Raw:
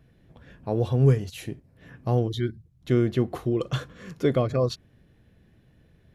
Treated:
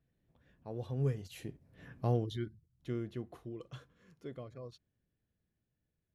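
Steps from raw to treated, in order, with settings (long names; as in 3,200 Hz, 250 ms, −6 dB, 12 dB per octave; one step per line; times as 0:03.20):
source passing by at 0:01.85, 7 m/s, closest 2.3 metres
level −5.5 dB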